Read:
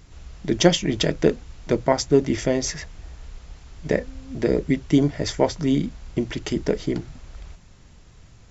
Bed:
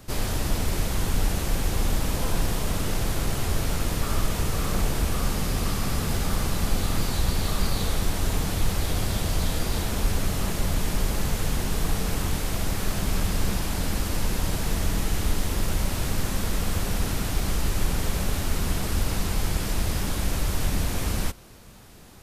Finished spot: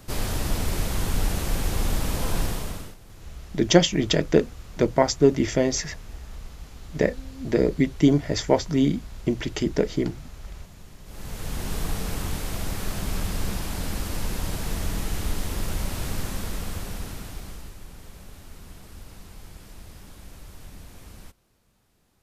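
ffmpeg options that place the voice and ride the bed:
-filter_complex "[0:a]adelay=3100,volume=1[s0];[1:a]volume=9.44,afade=t=out:st=2.41:d=0.55:silence=0.0749894,afade=t=in:st=11.04:d=0.67:silence=0.1,afade=t=out:st=16.14:d=1.64:silence=0.16788[s1];[s0][s1]amix=inputs=2:normalize=0"

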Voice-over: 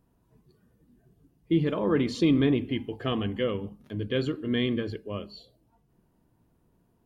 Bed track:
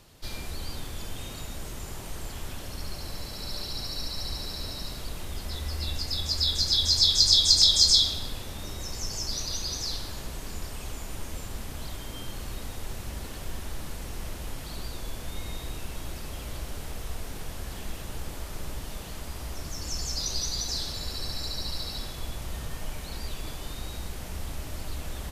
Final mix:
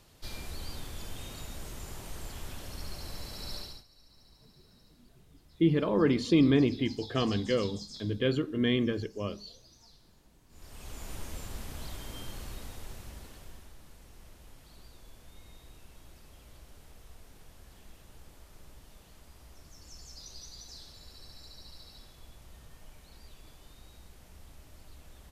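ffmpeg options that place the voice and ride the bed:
-filter_complex "[0:a]adelay=4100,volume=0.944[s0];[1:a]volume=8.41,afade=t=out:st=3.54:d=0.3:silence=0.0749894,afade=t=in:st=10.49:d=0.61:silence=0.0707946,afade=t=out:st=12.18:d=1.56:silence=0.223872[s1];[s0][s1]amix=inputs=2:normalize=0"

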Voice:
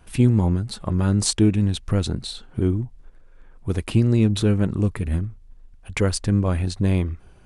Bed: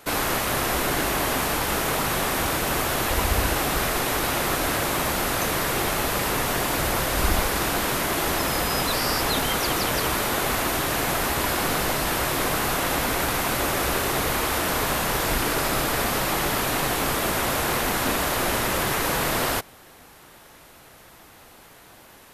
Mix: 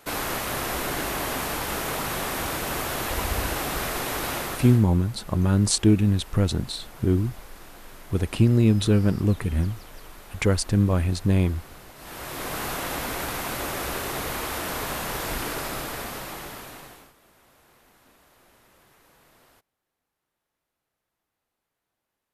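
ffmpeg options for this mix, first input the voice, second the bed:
-filter_complex "[0:a]adelay=4450,volume=0.944[s0];[1:a]volume=4.22,afade=t=out:st=4.34:d=0.51:silence=0.11885,afade=t=in:st=11.95:d=0.67:silence=0.141254,afade=t=out:st=15.42:d=1.71:silence=0.0375837[s1];[s0][s1]amix=inputs=2:normalize=0"

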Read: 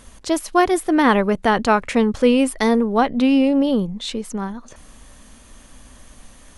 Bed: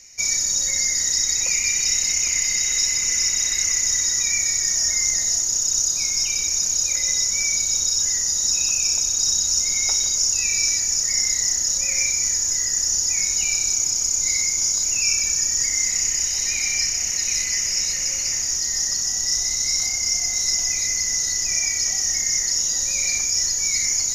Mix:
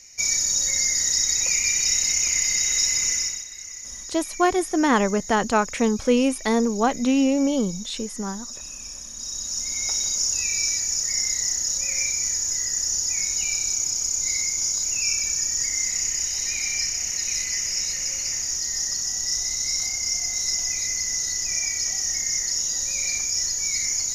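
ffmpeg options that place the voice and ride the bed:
-filter_complex "[0:a]adelay=3850,volume=0.631[s0];[1:a]volume=3.98,afade=t=out:st=3.06:d=0.39:silence=0.16788,afade=t=in:st=9.11:d=0.98:silence=0.223872[s1];[s0][s1]amix=inputs=2:normalize=0"

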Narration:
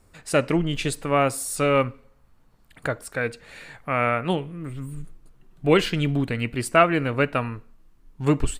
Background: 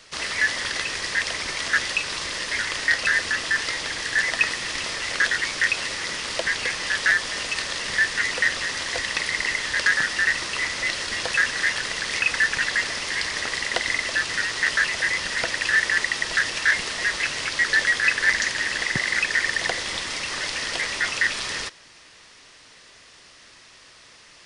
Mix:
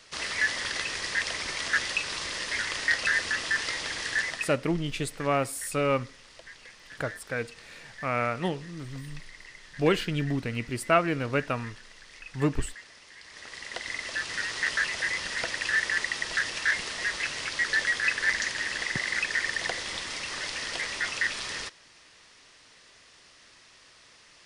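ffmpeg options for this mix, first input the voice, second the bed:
-filter_complex "[0:a]adelay=4150,volume=0.531[s0];[1:a]volume=4.47,afade=t=out:st=4.1:d=0.47:silence=0.112202,afade=t=in:st=13.22:d=1.31:silence=0.133352[s1];[s0][s1]amix=inputs=2:normalize=0"

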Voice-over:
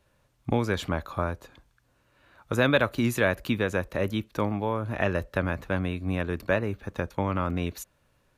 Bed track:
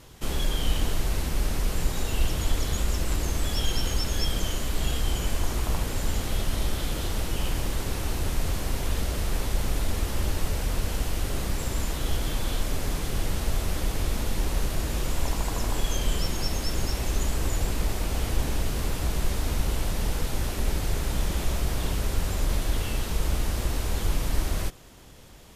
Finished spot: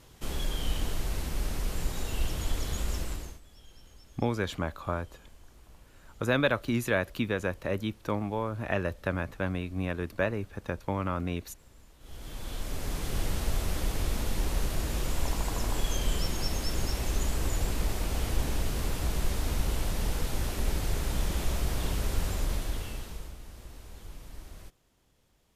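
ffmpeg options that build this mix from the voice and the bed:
-filter_complex "[0:a]adelay=3700,volume=0.668[s0];[1:a]volume=9.44,afade=t=out:st=2.97:d=0.43:silence=0.0749894,afade=t=in:st=11.99:d=1.19:silence=0.0562341,afade=t=out:st=22.25:d=1.1:silence=0.149624[s1];[s0][s1]amix=inputs=2:normalize=0"

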